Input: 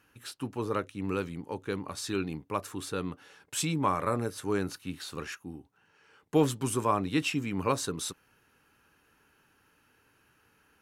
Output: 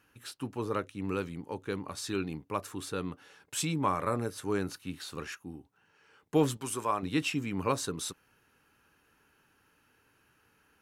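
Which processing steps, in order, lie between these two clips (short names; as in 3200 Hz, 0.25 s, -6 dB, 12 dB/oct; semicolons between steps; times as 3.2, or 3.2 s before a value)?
6.57–7.03 low shelf 350 Hz -11 dB; gain -1.5 dB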